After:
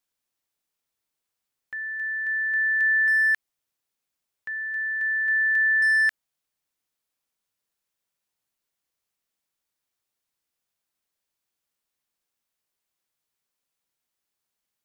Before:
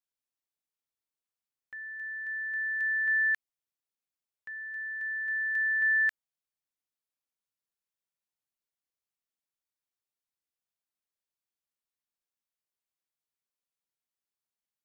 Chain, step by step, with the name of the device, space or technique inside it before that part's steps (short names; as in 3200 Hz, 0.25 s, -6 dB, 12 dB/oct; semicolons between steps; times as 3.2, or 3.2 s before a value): clipper into limiter (hard clip -23.5 dBFS, distortion -25 dB; limiter -26.5 dBFS, peak gain reduction 3 dB); gain +9 dB